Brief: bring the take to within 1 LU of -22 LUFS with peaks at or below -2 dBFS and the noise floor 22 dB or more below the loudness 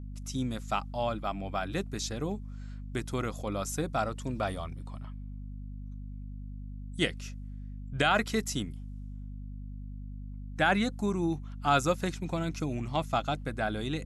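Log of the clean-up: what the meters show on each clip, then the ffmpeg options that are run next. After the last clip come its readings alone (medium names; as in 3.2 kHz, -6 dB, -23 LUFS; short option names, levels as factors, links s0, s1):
hum 50 Hz; highest harmonic 250 Hz; hum level -38 dBFS; loudness -32.0 LUFS; peak level -13.5 dBFS; loudness target -22.0 LUFS
-> -af "bandreject=f=50:t=h:w=6,bandreject=f=100:t=h:w=6,bandreject=f=150:t=h:w=6,bandreject=f=200:t=h:w=6,bandreject=f=250:t=h:w=6"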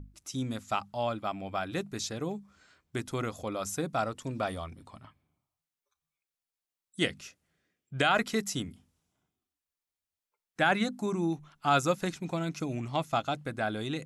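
hum not found; loudness -32.0 LUFS; peak level -13.0 dBFS; loudness target -22.0 LUFS
-> -af "volume=3.16"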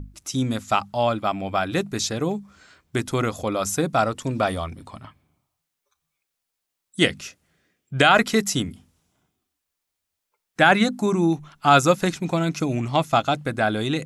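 loudness -22.0 LUFS; peak level -3.0 dBFS; noise floor -81 dBFS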